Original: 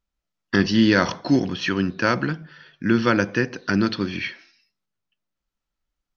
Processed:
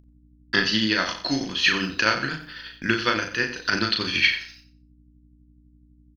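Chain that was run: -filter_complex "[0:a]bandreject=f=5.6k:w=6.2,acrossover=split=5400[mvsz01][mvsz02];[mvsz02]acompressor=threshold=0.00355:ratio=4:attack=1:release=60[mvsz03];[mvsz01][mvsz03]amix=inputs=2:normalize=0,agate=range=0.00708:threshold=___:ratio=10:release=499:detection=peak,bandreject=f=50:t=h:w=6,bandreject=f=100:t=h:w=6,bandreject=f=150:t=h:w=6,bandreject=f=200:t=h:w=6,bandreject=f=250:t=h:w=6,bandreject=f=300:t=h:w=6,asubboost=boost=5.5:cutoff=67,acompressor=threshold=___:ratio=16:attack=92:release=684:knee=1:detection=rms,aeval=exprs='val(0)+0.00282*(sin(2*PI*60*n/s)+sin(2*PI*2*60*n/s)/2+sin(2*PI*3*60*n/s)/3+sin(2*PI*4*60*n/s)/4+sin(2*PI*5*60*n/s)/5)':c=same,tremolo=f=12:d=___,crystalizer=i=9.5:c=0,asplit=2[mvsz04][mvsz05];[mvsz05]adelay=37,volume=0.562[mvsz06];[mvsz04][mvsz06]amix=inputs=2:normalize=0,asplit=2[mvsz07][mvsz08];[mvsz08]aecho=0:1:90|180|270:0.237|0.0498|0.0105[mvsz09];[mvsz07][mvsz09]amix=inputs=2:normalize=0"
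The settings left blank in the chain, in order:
0.00631, 0.0708, 0.58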